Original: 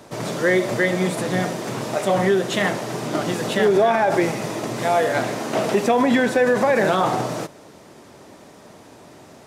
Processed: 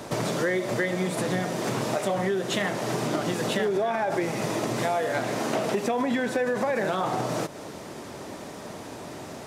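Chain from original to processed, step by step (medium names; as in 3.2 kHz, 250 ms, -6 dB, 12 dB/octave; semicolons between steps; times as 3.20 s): compression 5:1, threshold -31 dBFS, peak gain reduction 15.5 dB; trim +6 dB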